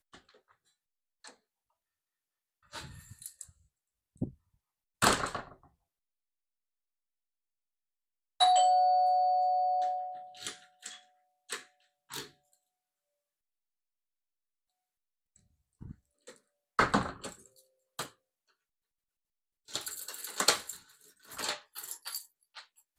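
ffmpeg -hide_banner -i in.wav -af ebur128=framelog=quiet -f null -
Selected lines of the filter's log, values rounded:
Integrated loudness:
  I:         -30.9 LUFS
  Threshold: -43.6 LUFS
Loudness range:
  LRA:        22.8 LU
  Threshold: -55.2 LUFS
  LRA low:   -51.8 LUFS
  LRA high:  -29.0 LUFS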